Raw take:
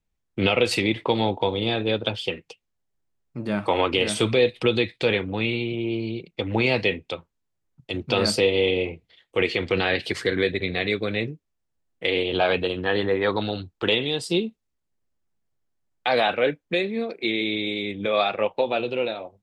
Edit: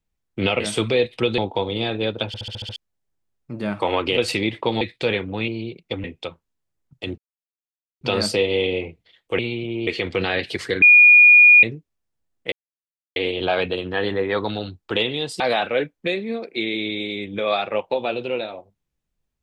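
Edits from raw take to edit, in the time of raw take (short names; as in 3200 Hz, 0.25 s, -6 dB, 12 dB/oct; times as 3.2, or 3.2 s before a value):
0.6–1.24 swap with 4.03–4.81
2.13 stutter in place 0.07 s, 7 plays
5.48–5.96 move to 9.43
6.52–6.91 cut
8.05 insert silence 0.83 s
10.38–11.19 bleep 2440 Hz -6.5 dBFS
12.08 insert silence 0.64 s
14.32–16.07 cut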